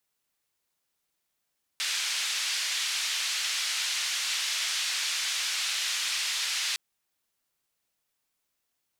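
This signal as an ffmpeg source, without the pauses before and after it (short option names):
-f lavfi -i "anoisesrc=c=white:d=4.96:r=44100:seed=1,highpass=f=2100,lowpass=f=5200,volume=-17dB"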